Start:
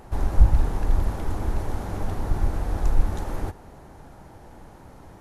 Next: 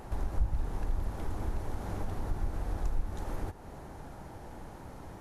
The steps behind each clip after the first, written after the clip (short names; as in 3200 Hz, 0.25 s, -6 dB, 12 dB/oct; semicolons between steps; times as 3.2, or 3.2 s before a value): compressor 2:1, threshold -36 dBFS, peak gain reduction 15.5 dB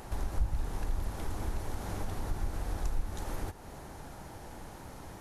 high shelf 2100 Hz +8.5 dB; gain -1 dB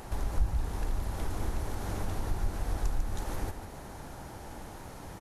echo 0.147 s -8 dB; gain +1.5 dB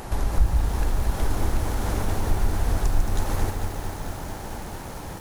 lo-fi delay 0.222 s, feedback 80%, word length 8-bit, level -9 dB; gain +8 dB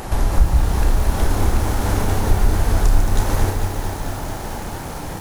flutter echo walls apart 5.2 m, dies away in 0.22 s; gain +6 dB